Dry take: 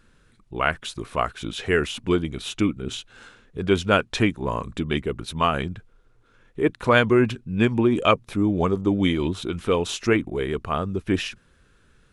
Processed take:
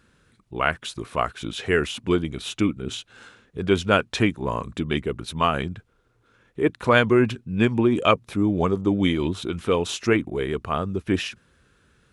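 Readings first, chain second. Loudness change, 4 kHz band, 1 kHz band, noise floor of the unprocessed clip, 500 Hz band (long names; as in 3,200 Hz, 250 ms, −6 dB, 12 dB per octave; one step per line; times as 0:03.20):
0.0 dB, 0.0 dB, 0.0 dB, −59 dBFS, 0.0 dB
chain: high-pass filter 55 Hz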